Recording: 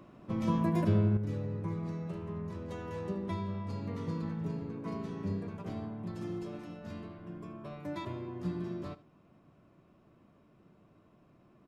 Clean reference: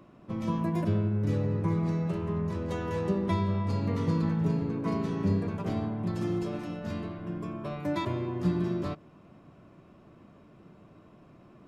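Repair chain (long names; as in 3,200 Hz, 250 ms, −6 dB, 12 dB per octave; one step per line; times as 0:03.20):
echo removal 77 ms −17.5 dB
level correction +8.5 dB, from 0:01.17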